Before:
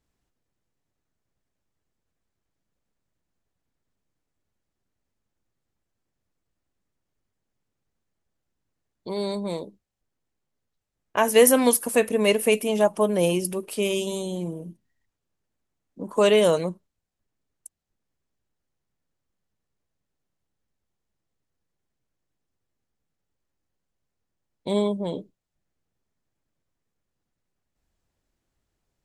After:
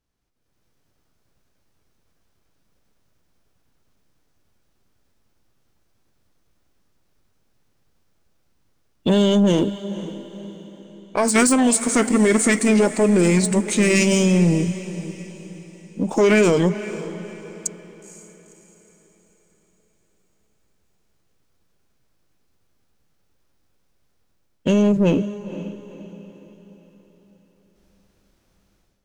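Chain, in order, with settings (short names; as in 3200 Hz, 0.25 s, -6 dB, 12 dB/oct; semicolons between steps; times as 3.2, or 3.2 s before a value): AGC gain up to 16 dB; limiter -9 dBFS, peak gain reduction 8 dB; sample leveller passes 1; formant shift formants -4 st; on a send: diffused feedback echo 0.493 s, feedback 44%, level -14 dB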